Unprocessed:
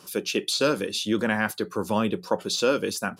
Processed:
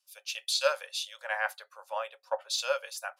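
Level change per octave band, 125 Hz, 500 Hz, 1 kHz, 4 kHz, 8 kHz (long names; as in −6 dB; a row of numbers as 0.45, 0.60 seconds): below −40 dB, −8.5 dB, −5.0 dB, −4.0 dB, −5.0 dB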